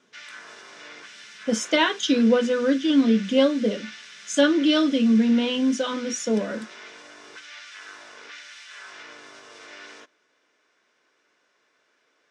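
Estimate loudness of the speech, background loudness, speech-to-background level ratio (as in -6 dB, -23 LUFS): -21.5 LUFS, -41.5 LUFS, 20.0 dB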